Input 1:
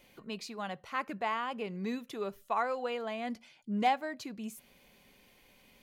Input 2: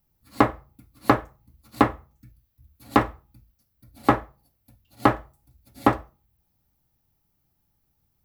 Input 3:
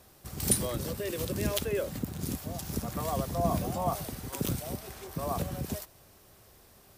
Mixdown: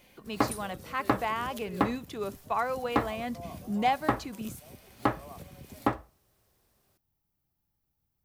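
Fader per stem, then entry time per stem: +2.0, -8.5, -13.5 dB; 0.00, 0.00, 0.00 s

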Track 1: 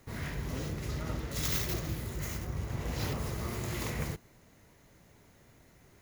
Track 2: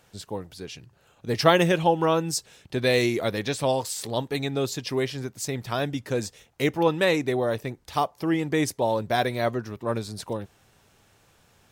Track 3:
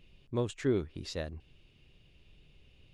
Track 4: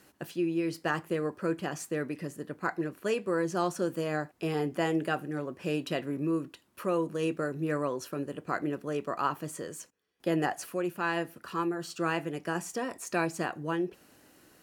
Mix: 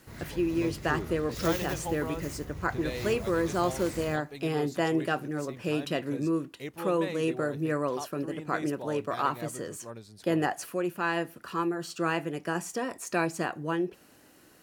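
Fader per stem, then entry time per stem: -5.0, -15.5, -7.5, +1.5 dB; 0.00, 0.00, 0.25, 0.00 s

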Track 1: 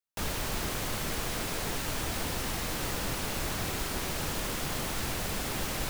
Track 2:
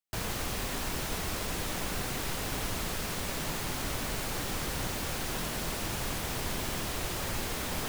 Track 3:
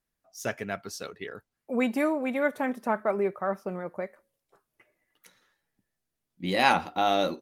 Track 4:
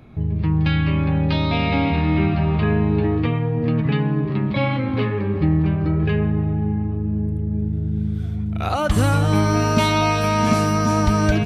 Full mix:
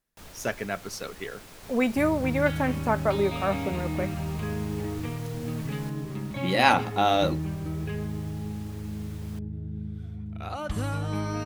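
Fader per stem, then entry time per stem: -14.0, -16.5, +2.0, -12.5 dB; 0.00, 1.50, 0.00, 1.80 s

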